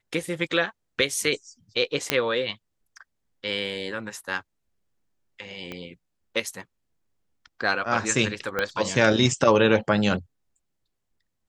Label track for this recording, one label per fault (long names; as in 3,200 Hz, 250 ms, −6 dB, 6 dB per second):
2.100000	2.100000	click −4 dBFS
5.720000	5.720000	click −20 dBFS
8.590000	8.590000	click −11 dBFS